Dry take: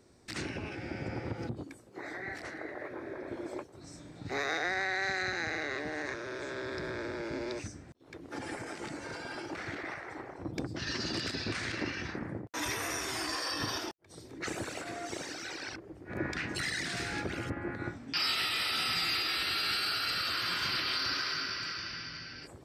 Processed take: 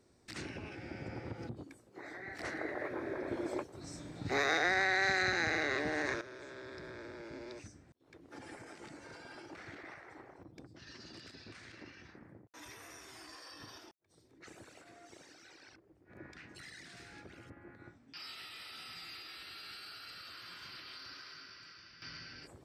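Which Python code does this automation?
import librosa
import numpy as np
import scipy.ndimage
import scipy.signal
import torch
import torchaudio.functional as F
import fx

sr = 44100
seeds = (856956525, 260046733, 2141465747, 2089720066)

y = fx.gain(x, sr, db=fx.steps((0.0, -6.0), (2.39, 2.0), (6.21, -10.0), (10.43, -17.0), (22.02, -5.0)))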